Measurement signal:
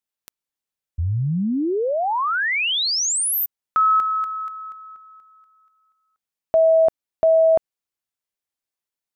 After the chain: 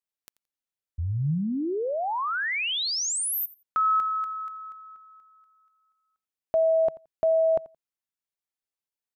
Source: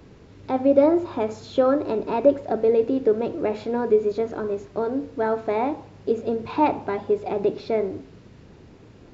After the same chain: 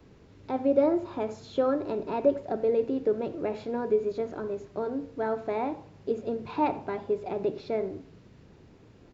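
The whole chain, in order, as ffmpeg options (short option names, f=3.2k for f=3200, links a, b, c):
-filter_complex "[0:a]adynamicequalizer=threshold=0.00501:dfrequency=150:dqfactor=3.5:tfrequency=150:tqfactor=3.5:attack=5:release=100:ratio=0.375:range=2:mode=boostabove:tftype=bell,asplit=2[a][b];[b]aecho=0:1:86|172:0.0944|0.016[c];[a][c]amix=inputs=2:normalize=0,volume=-6.5dB"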